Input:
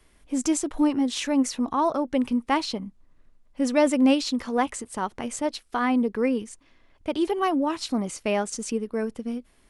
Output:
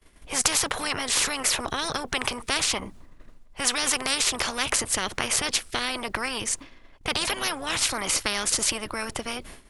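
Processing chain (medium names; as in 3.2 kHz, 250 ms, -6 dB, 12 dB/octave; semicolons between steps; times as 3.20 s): expander -47 dBFS; spectrum-flattening compressor 10:1; trim +5.5 dB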